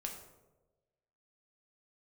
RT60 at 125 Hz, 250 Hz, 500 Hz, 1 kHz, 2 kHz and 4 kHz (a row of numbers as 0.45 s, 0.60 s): 1.3 s, 1.1 s, 1.4 s, 0.95 s, 0.65 s, 0.55 s